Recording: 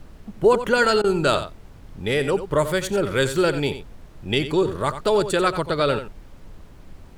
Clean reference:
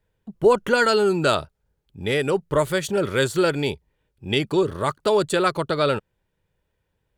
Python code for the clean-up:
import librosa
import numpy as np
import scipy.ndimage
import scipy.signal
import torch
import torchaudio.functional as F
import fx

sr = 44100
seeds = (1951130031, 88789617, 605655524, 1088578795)

y = fx.fix_interpolate(x, sr, at_s=(1.02,), length_ms=20.0)
y = fx.noise_reduce(y, sr, print_start_s=6.66, print_end_s=7.16, reduce_db=30.0)
y = fx.fix_echo_inverse(y, sr, delay_ms=90, level_db=-11.5)